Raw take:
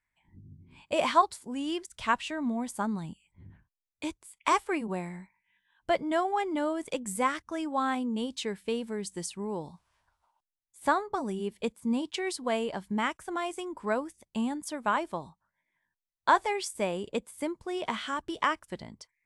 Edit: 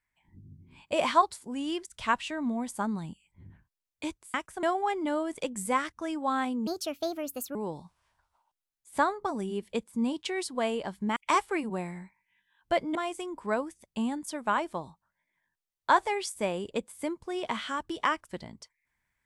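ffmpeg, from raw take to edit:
-filter_complex "[0:a]asplit=7[a][b][c][d][e][f][g];[a]atrim=end=4.342[h];[b]atrim=start=13.048:end=13.342[i];[c]atrim=start=6.128:end=8.174[j];[d]atrim=start=8.17:end=9.44,asetpts=PTS-STARTPTS,asetrate=63504,aresample=44100[k];[e]atrim=start=9.436:end=13.052[l];[f]atrim=start=4.338:end=6.132[m];[g]atrim=start=13.338[n];[h][i]acrossfade=d=0.004:c1=hsin:c2=hsin[o];[o][j]acrossfade=d=0.004:c1=hsin:c2=hsin[p];[p][k]acrossfade=d=0.004:c1=hsin:c2=hsin[q];[q][l]acrossfade=d=0.004:c1=hsin:c2=hsin[r];[r][m]acrossfade=d=0.004:c1=hsin:c2=hsin[s];[s][n]acrossfade=d=0.004:c1=hsin:c2=hsin"

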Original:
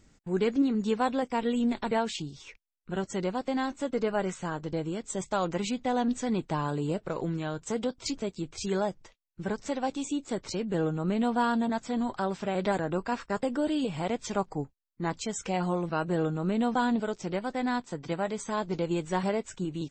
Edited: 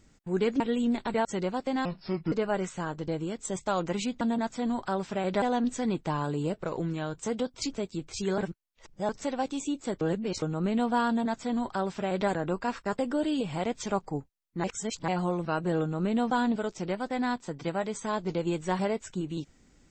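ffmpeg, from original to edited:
-filter_complex "[0:a]asplit=13[a][b][c][d][e][f][g][h][i][j][k][l][m];[a]atrim=end=0.602[n];[b]atrim=start=1.368:end=2.022[o];[c]atrim=start=3.058:end=3.664[p];[d]atrim=start=3.66:end=3.97,asetpts=PTS-STARTPTS,asetrate=29106,aresample=44100[q];[e]atrim=start=3.966:end=5.862[r];[f]atrim=start=11.518:end=12.732[s];[g]atrim=start=5.858:end=8.822[t];[h]atrim=start=8.818:end=9.532,asetpts=PTS-STARTPTS,areverse[u];[i]atrim=start=9.528:end=10.452[v];[j]atrim=start=10.448:end=10.862,asetpts=PTS-STARTPTS,areverse[w];[k]atrim=start=10.858:end=15.082[x];[l]atrim=start=15.078:end=15.522,asetpts=PTS-STARTPTS,areverse[y];[m]atrim=start=15.518[z];[n][o]acrossfade=d=0.004:c1=hsin:c2=hsin[aa];[aa][p]acrossfade=d=0.004:c1=hsin:c2=hsin[ab];[ab][q]acrossfade=d=0.004:c1=hsin:c2=hsin[ac];[ac][r]acrossfade=d=0.004:c1=hsin:c2=hsin[ad];[ad][s]acrossfade=d=0.004:c1=hsin:c2=hsin[ae];[ae][t]acrossfade=d=0.004:c1=hsin:c2=hsin[af];[af][u]acrossfade=d=0.004:c1=hsin:c2=hsin[ag];[ag][v]acrossfade=d=0.004:c1=hsin:c2=hsin[ah];[ah][w]acrossfade=d=0.004:c1=hsin:c2=hsin[ai];[ai][x]acrossfade=d=0.004:c1=hsin:c2=hsin[aj];[aj][y]acrossfade=d=0.004:c1=hsin:c2=hsin[ak];[ak][z]acrossfade=d=0.004:c1=hsin:c2=hsin"

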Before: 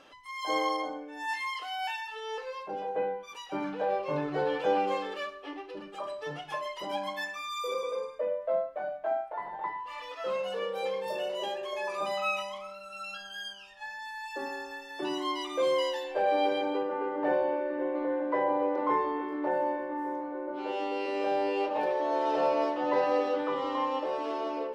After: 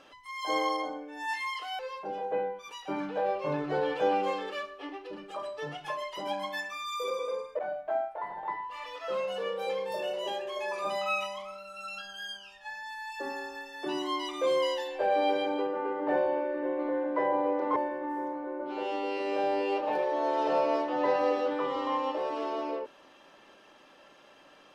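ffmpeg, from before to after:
-filter_complex "[0:a]asplit=4[a][b][c][d];[a]atrim=end=1.792[e];[b]atrim=start=2.428:end=8.232[f];[c]atrim=start=8.748:end=18.922[g];[d]atrim=start=19.638[h];[e][f]acrossfade=d=0.004:c1=hsin:c2=hsin[i];[i][g]acrossfade=d=0.004:c1=hsin:c2=hsin[j];[j][h]acrossfade=d=0.004:c1=hsin:c2=hsin"

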